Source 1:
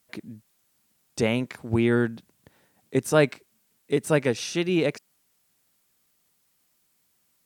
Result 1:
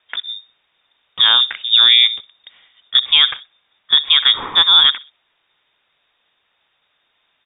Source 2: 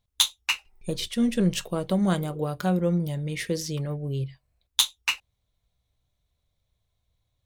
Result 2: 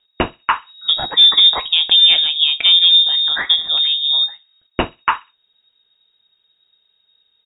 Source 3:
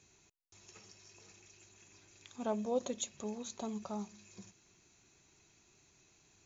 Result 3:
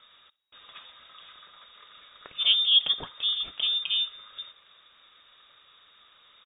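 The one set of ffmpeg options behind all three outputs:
-filter_complex "[0:a]asplit=2[a][b];[b]adelay=63,lowpass=f=1.7k:p=1,volume=-20dB,asplit=2[c][d];[d]adelay=63,lowpass=f=1.7k:p=1,volume=0.4,asplit=2[e][f];[f]adelay=63,lowpass=f=1.7k:p=1,volume=0.4[g];[a][c][e][g]amix=inputs=4:normalize=0,lowpass=f=3.2k:t=q:w=0.5098,lowpass=f=3.2k:t=q:w=0.6013,lowpass=f=3.2k:t=q:w=0.9,lowpass=f=3.2k:t=q:w=2.563,afreqshift=-3800,alimiter=level_in=14dB:limit=-1dB:release=50:level=0:latency=1,volume=-1dB"

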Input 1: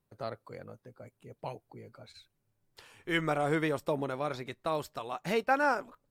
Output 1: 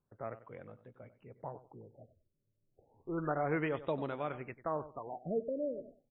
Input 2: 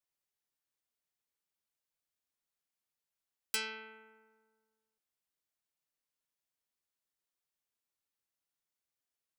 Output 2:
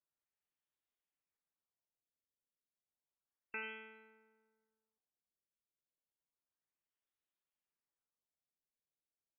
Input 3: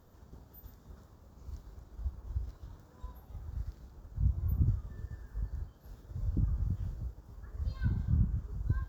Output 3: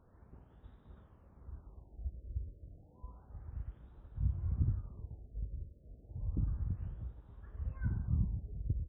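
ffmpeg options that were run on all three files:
-filter_complex "[0:a]asplit=2[a][b];[b]adelay=95,lowpass=f=4.7k:p=1,volume=-14.5dB,asplit=2[c][d];[d]adelay=95,lowpass=f=4.7k:p=1,volume=0.2[e];[a][c][e]amix=inputs=3:normalize=0,afftfilt=real='re*lt(b*sr/1024,620*pow(4000/620,0.5+0.5*sin(2*PI*0.31*pts/sr)))':imag='im*lt(b*sr/1024,620*pow(4000/620,0.5+0.5*sin(2*PI*0.31*pts/sr)))':win_size=1024:overlap=0.75,volume=-4dB"

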